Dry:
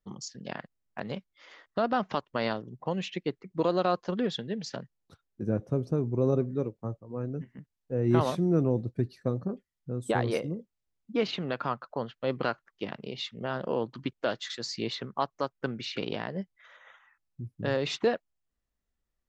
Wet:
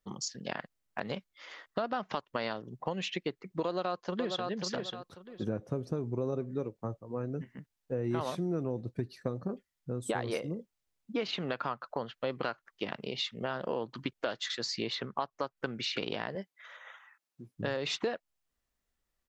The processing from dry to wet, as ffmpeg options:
-filter_complex "[0:a]asplit=2[a][b];[b]afade=t=in:st=3.65:d=0.01,afade=t=out:st=4.48:d=0.01,aecho=0:1:540|1080|1620:0.398107|0.0796214|0.0159243[c];[a][c]amix=inputs=2:normalize=0,asettb=1/sr,asplit=3[d][e][f];[d]atrim=end=14.464[g];[e]atrim=start=14.46:end=15.57,asetpts=PTS-STARTPTS,afade=t=in:d=0.004:c=qsin,afade=t=out:st=1.106:d=0.004:c=qsin,highshelf=f=7.8k:g=-10[h];[f]atrim=start=15.566[i];[g][h]acrossfade=d=0.004:c1=hsin:c2=qsin[j];[j][i]acrossfade=d=0.004:c1=qsin:c2=hsin,asettb=1/sr,asplit=3[k][l][m];[k]atrim=end=16.354[n];[l]atrim=start=16.35:end=17.57,asetpts=PTS-STARTPTS,afade=t=in:d=0.004:c=qsin,afade=t=out:st=1.216:d=0.004:c=qsin,highpass=260[o];[m]atrim=start=17.566[p];[n][o]acrossfade=d=0.004:c1=hsin:c2=qsin[q];[q][p]acrossfade=d=0.004:c1=qsin:c2=hsin,lowshelf=f=400:g=-6.5,acompressor=threshold=-35dB:ratio=4,volume=4.5dB"

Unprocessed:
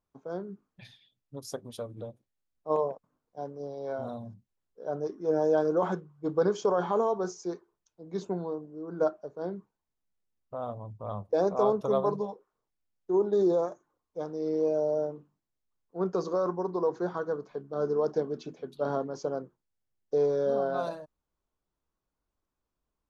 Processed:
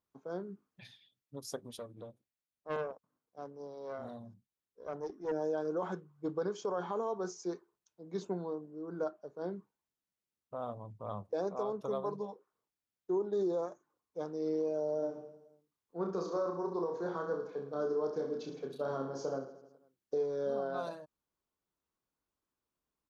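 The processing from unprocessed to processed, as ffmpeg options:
-filter_complex "[0:a]asettb=1/sr,asplit=3[a][b][c];[a]atrim=end=1.784[d];[b]atrim=start=1.78:end=5.32,asetpts=PTS-STARTPTS,afade=t=in:d=0.004:c=qsin,afade=t=out:st=3.536:d=0.004:c=qsin,aeval=exprs='(tanh(17.8*val(0)+0.65)-tanh(0.65))/17.8':c=same[e];[c]atrim=start=5.316[f];[d][e]acrossfade=d=0.004:c1=hsin:c2=qsin[g];[g][f]acrossfade=d=0.004:c1=qsin:c2=hsin,asplit=3[h][i][j];[h]afade=t=out:st=15.01:d=0.02[k];[i]aecho=1:1:30|66|109.2|161|223.2|297.9|387.5|495:0.631|0.398|0.251|0.158|0.1|0.0631|0.0398|0.0251,afade=t=in:st=15.01:d=0.02,afade=t=out:st=20.22:d=0.02[l];[j]afade=t=in:st=20.22:d=0.02[m];[k][l][m]amix=inputs=3:normalize=0,highpass=f=150:p=1,equalizer=f=660:w=1.5:g=-2.5,alimiter=limit=-24dB:level=0:latency=1:release=440,volume=-2dB"

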